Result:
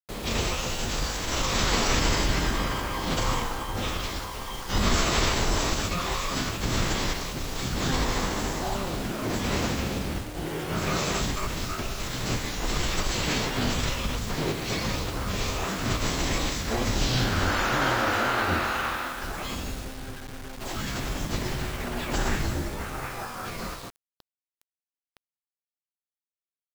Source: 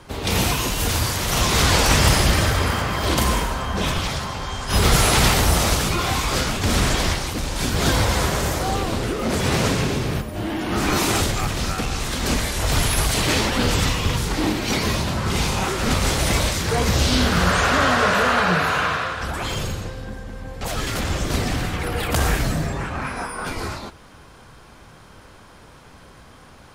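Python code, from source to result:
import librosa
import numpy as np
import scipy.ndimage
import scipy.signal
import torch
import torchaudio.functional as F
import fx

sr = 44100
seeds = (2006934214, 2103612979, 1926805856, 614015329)

y = fx.pitch_keep_formants(x, sr, semitones=-12.0)
y = fx.quant_dither(y, sr, seeds[0], bits=6, dither='none')
y = y * librosa.db_to_amplitude(-5.0)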